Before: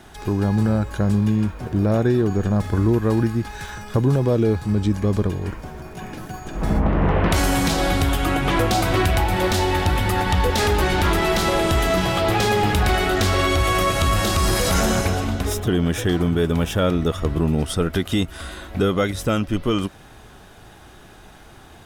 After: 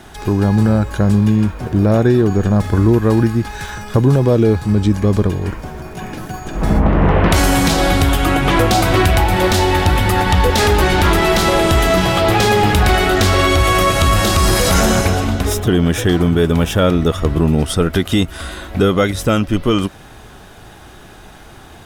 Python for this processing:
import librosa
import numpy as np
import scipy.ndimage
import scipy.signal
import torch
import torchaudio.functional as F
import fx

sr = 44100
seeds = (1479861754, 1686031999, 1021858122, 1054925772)

y = fx.quant_dither(x, sr, seeds[0], bits=12, dither='none')
y = y * 10.0 ** (6.0 / 20.0)